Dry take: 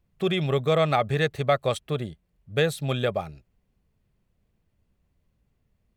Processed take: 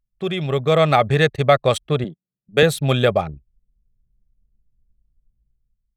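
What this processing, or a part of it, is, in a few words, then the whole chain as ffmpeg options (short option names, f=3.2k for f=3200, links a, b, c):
voice memo with heavy noise removal: -filter_complex "[0:a]asettb=1/sr,asplit=3[a][b][c];[a]atrim=end=2.044[d];[b]atrim=start=2.04:end=2.63,asetpts=PTS-STARTPTS,afade=t=in:d=0.004:c=qsin,afade=t=out:st=0.586:d=0.004:c=qsin,highpass=f=160:w=0.5412,highpass=f=160:w=1.3066[e];[c]atrim=start=2.626[f];[d][e]acrossfade=d=0.004:c1=hsin:c2=qsin[g];[g][f]acrossfade=d=0.004:c1=qsin:c2=hsin,anlmdn=0.251,dynaudnorm=f=190:g=7:m=13.5dB"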